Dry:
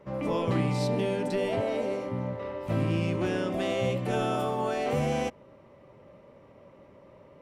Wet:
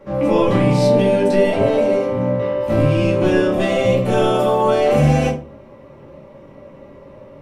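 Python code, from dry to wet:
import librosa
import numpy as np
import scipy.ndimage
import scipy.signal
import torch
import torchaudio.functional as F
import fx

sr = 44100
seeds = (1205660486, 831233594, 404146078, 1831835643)

y = fx.room_shoebox(x, sr, seeds[0], volume_m3=200.0, walls='furnished', distance_m=2.3)
y = y * 10.0 ** (6.0 / 20.0)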